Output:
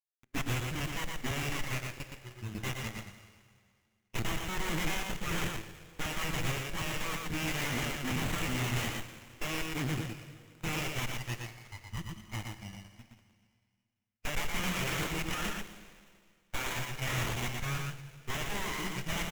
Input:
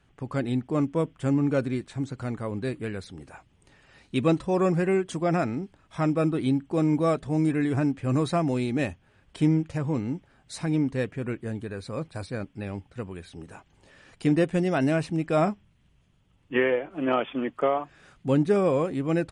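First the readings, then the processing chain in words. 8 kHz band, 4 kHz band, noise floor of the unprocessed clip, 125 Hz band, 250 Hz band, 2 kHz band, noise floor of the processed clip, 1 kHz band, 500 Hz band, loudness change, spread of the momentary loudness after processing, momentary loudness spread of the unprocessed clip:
+7.5 dB, +5.5 dB, -64 dBFS, -8.5 dB, -15.0 dB, 0.0 dB, -77 dBFS, -7.0 dB, -17.0 dB, -9.0 dB, 12 LU, 13 LU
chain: rattle on loud lows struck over -29 dBFS, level -27 dBFS; high-pass 650 Hz 12 dB/octave; level-controlled noise filter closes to 1 kHz, open at -28.5 dBFS; treble shelf 4.9 kHz +9 dB; static phaser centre 2.7 kHz, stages 4; full-wave rectifier; companded quantiser 2-bit; spectral noise reduction 22 dB; Butterworth band-stop 900 Hz, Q 0.52; delay 118 ms -3.5 dB; plate-style reverb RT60 2 s, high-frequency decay 1×, DRR 8 dB; sliding maximum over 9 samples

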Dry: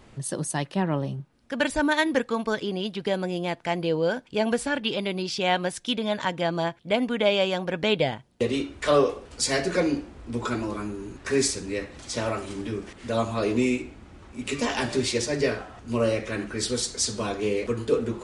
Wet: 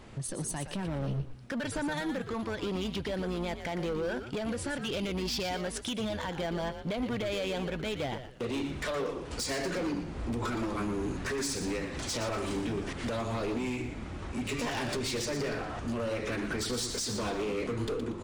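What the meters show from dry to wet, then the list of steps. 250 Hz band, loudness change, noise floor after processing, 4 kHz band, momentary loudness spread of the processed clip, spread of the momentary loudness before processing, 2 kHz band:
-6.0 dB, -7.0 dB, -42 dBFS, -7.0 dB, 4 LU, 10 LU, -7.5 dB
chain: treble shelf 6.9 kHz -3.5 dB; compression 6:1, threshold -33 dBFS, peak gain reduction 16.5 dB; peak limiter -29 dBFS, peak gain reduction 8.5 dB; level rider gain up to 5.5 dB; hard clipper -31 dBFS, distortion -11 dB; on a send: frequency-shifting echo 118 ms, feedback 32%, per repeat -130 Hz, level -9 dB; on the sum: trim +1.5 dB

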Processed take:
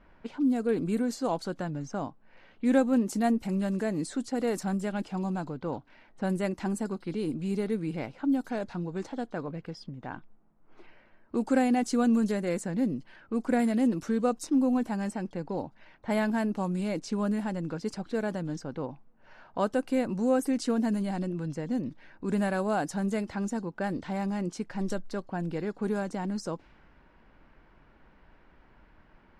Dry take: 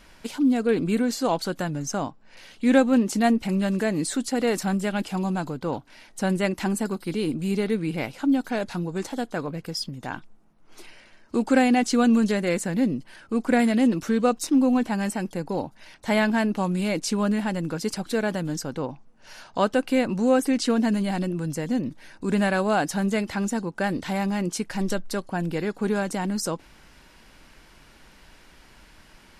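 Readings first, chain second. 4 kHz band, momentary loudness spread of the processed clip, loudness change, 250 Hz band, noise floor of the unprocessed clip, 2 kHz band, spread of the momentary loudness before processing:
-11.5 dB, 11 LU, -5.5 dB, -5.0 dB, -53 dBFS, -9.0 dB, 10 LU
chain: dynamic bell 3 kHz, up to -7 dB, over -44 dBFS, Q 0.72; level-controlled noise filter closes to 1.4 kHz, open at -19.5 dBFS; trim -5 dB

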